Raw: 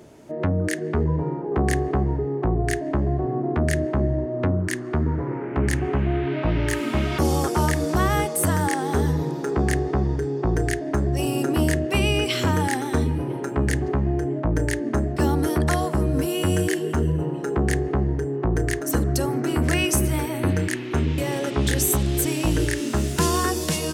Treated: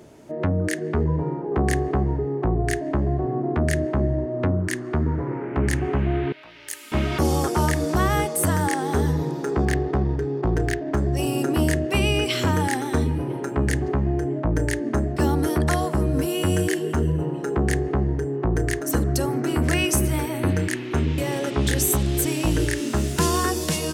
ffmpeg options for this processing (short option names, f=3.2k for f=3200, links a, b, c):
-filter_complex "[0:a]asettb=1/sr,asplit=3[a][b][c];[a]atrim=end=6.324[d];[b]atrim=start=6.32:end=6.92,asetpts=PTS-STARTPTS,afade=t=in:d=0.004:c=qsin,afade=t=out:st=0.596:d=0.004:c=qsin,aderivative[e];[c]atrim=start=6.916[f];[d][e]acrossfade=d=0.004:c1=hsin:c2=qsin[g];[g][f]acrossfade=d=0.004:c1=qsin:c2=hsin,asettb=1/sr,asplit=3[h][i][j];[h]atrim=end=9.654[k];[i]atrim=start=9.65:end=10.97,asetpts=PTS-STARTPTS,afade=t=in:d=0.004:c=qsin,afade=t=out:st=1.316:d=0.004:c=qsin,adynamicsmooth=sensitivity=6.5:basefreq=2.1k[l];[j]atrim=start=10.966[m];[k][l]acrossfade=d=0.004:c1=hsin:c2=qsin[n];[n][m]acrossfade=d=0.004:c1=qsin:c2=hsin"